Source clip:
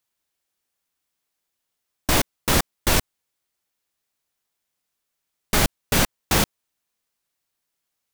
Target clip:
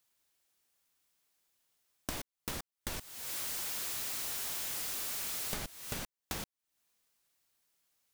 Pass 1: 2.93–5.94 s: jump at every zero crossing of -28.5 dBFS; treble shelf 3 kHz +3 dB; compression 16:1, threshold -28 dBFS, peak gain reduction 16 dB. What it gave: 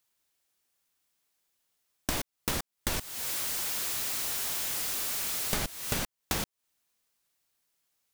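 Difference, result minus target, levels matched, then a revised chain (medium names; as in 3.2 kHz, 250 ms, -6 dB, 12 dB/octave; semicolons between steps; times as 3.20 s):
compression: peak gain reduction -8.5 dB
2.93–5.94 s: jump at every zero crossing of -28.5 dBFS; treble shelf 3 kHz +3 dB; compression 16:1, threshold -37 dBFS, peak gain reduction 24.5 dB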